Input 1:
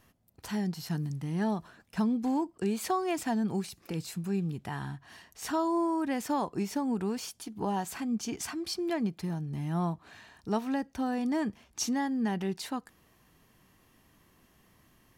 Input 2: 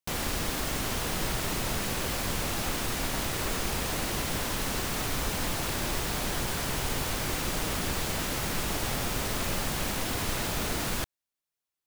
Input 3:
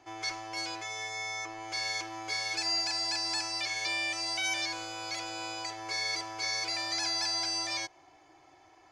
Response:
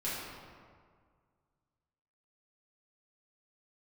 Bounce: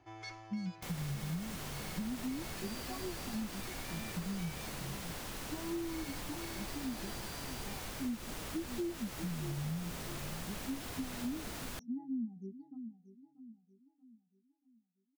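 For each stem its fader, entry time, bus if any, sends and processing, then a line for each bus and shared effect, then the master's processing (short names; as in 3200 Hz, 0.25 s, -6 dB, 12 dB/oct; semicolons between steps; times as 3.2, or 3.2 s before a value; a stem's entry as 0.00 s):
+0.5 dB, 0.00 s, no send, echo send -14 dB, bell 240 Hz -2.5 dB 0.46 oct; compressor 12:1, threshold -36 dBFS, peak gain reduction 12 dB; spectral expander 4:1
-12.5 dB, 0.75 s, no send, no echo send, dry
-7.5 dB, 0.00 s, no send, no echo send, tone controls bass +12 dB, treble -7 dB; auto duck -11 dB, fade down 1.15 s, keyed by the first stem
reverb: off
echo: feedback echo 0.634 s, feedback 41%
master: compressor 5:1, threshold -35 dBFS, peak gain reduction 8 dB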